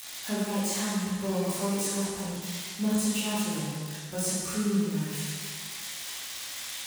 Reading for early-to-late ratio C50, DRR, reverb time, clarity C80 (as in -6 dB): -2.5 dB, -10.0 dB, 1.7 s, 0.0 dB